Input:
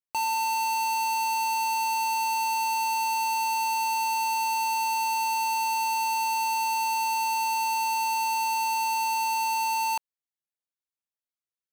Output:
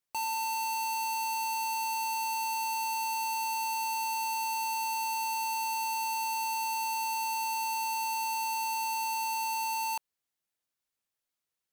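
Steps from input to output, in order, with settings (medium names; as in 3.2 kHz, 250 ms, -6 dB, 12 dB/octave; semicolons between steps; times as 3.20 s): in parallel at -9 dB: sine folder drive 11 dB, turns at -26 dBFS; on the sum: trim -3 dB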